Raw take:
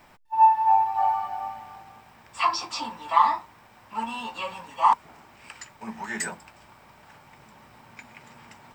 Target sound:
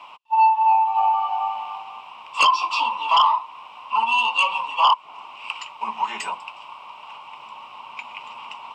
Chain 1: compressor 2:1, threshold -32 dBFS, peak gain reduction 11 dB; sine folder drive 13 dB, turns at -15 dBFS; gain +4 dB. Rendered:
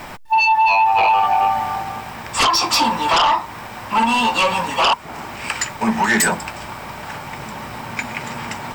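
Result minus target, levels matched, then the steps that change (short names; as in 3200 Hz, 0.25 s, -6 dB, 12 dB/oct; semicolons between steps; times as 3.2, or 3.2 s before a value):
2000 Hz band +4.0 dB
add after compressor: double band-pass 1700 Hz, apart 1.4 oct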